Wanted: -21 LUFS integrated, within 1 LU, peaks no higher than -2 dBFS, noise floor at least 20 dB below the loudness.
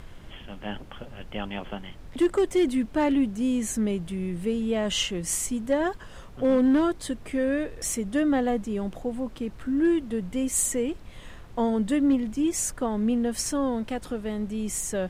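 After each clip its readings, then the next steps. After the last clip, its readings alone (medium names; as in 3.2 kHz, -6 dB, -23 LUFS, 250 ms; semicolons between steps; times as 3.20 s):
clipped samples 0.3%; clipping level -15.5 dBFS; noise floor -44 dBFS; noise floor target -47 dBFS; loudness -26.5 LUFS; peak level -15.5 dBFS; loudness target -21.0 LUFS
-> clip repair -15.5 dBFS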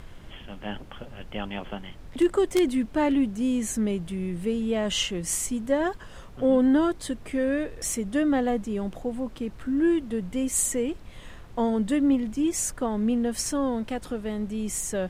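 clipped samples 0.0%; noise floor -44 dBFS; noise floor target -47 dBFS
-> noise print and reduce 6 dB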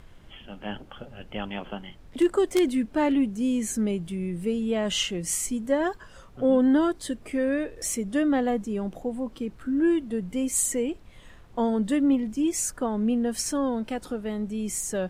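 noise floor -49 dBFS; loudness -26.5 LUFS; peak level -6.5 dBFS; loudness target -21.0 LUFS
-> trim +5.5 dB; peak limiter -2 dBFS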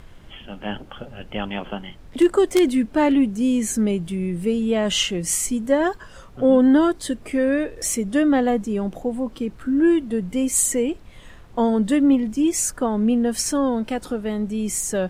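loudness -21.0 LUFS; peak level -2.0 dBFS; noise floor -44 dBFS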